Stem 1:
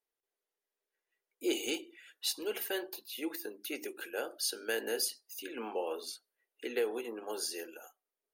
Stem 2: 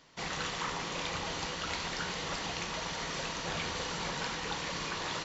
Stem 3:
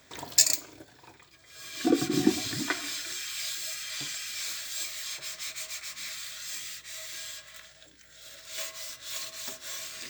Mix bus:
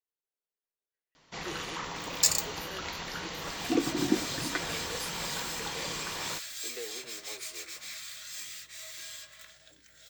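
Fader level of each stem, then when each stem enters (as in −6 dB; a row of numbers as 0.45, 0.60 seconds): −10.0, −2.0, −3.5 decibels; 0.00, 1.15, 1.85 seconds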